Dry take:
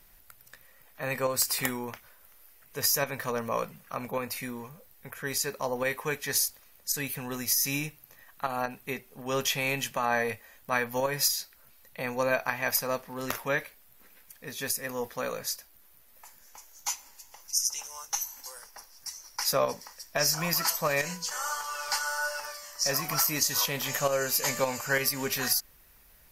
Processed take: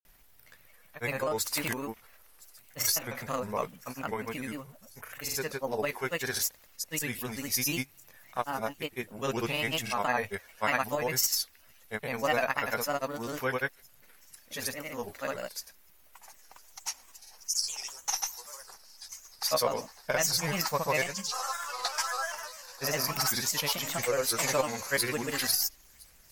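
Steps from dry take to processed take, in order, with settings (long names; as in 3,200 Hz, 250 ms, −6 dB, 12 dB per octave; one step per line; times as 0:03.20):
granular cloud, pitch spread up and down by 3 semitones
delay with a high-pass on its return 1,013 ms, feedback 51%, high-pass 5,000 Hz, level −22 dB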